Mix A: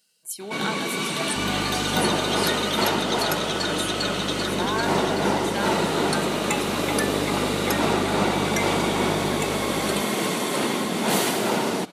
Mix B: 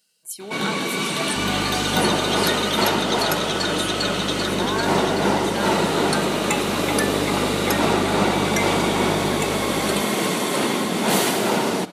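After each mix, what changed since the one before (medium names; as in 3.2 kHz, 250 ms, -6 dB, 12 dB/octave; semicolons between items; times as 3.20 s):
first sound: send +7.5 dB; second sound: send +9.5 dB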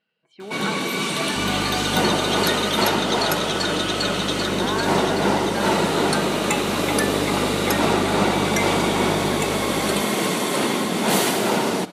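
speech: add low-pass 2.6 kHz 24 dB/octave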